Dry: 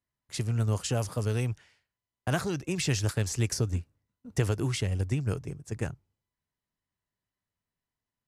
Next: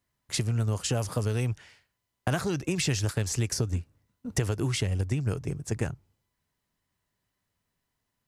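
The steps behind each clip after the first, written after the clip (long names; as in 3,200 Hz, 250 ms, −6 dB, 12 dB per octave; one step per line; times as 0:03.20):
downward compressor 3 to 1, threshold −36 dBFS, peak gain reduction 11.5 dB
level +9 dB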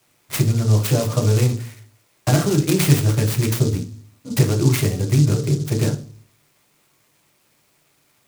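background noise white −66 dBFS
convolution reverb RT60 0.40 s, pre-delay 3 ms, DRR 0 dB
short delay modulated by noise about 5,600 Hz, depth 0.08 ms
level −1 dB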